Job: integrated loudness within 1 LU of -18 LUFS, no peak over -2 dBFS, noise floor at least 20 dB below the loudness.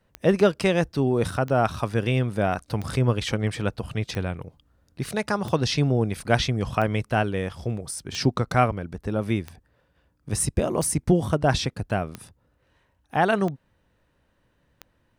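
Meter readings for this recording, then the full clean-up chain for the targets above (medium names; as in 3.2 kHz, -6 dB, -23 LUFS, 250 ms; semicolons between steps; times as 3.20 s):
clicks found 12; loudness -25.0 LUFS; peak level -5.0 dBFS; loudness target -18.0 LUFS
-> de-click; trim +7 dB; peak limiter -2 dBFS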